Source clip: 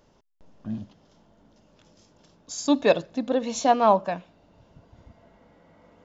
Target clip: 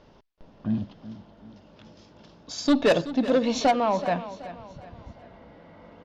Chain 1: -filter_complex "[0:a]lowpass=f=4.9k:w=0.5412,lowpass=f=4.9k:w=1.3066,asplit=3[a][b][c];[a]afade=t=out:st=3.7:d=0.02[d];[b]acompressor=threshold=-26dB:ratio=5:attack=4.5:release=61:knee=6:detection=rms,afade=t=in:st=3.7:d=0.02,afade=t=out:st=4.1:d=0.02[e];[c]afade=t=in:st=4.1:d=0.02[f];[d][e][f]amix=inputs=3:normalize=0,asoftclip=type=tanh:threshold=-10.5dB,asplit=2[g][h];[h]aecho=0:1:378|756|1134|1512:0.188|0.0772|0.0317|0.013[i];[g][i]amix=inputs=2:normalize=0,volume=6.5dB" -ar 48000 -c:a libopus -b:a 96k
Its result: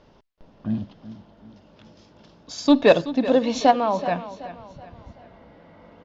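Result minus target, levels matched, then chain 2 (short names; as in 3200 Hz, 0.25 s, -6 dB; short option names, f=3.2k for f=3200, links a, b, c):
soft clip: distortion -12 dB
-filter_complex "[0:a]lowpass=f=4.9k:w=0.5412,lowpass=f=4.9k:w=1.3066,asplit=3[a][b][c];[a]afade=t=out:st=3.7:d=0.02[d];[b]acompressor=threshold=-26dB:ratio=5:attack=4.5:release=61:knee=6:detection=rms,afade=t=in:st=3.7:d=0.02,afade=t=out:st=4.1:d=0.02[e];[c]afade=t=in:st=4.1:d=0.02[f];[d][e][f]amix=inputs=3:normalize=0,asoftclip=type=tanh:threshold=-21dB,asplit=2[g][h];[h]aecho=0:1:378|756|1134|1512:0.188|0.0772|0.0317|0.013[i];[g][i]amix=inputs=2:normalize=0,volume=6.5dB" -ar 48000 -c:a libopus -b:a 96k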